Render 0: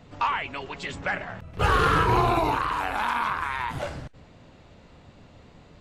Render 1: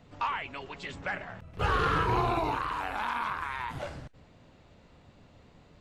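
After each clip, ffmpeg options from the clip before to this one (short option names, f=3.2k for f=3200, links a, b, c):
-filter_complex "[0:a]acrossover=split=6600[a][b];[b]acompressor=threshold=-55dB:ratio=4:attack=1:release=60[c];[a][c]amix=inputs=2:normalize=0,volume=-6dB"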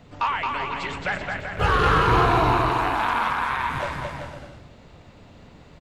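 -af "aecho=1:1:220|385|508.8|601.6|671.2:0.631|0.398|0.251|0.158|0.1,volume=7dB"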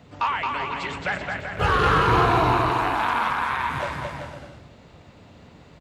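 -af "highpass=57"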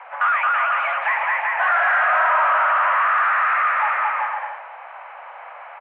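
-filter_complex "[0:a]asplit=2[a][b];[b]highpass=f=720:p=1,volume=29dB,asoftclip=type=tanh:threshold=-6.5dB[c];[a][c]amix=inputs=2:normalize=0,lowpass=f=1.4k:p=1,volume=-6dB,highpass=f=350:t=q:w=0.5412,highpass=f=350:t=q:w=1.307,lowpass=f=2.2k:t=q:w=0.5176,lowpass=f=2.2k:t=q:w=0.7071,lowpass=f=2.2k:t=q:w=1.932,afreqshift=270,volume=-2.5dB"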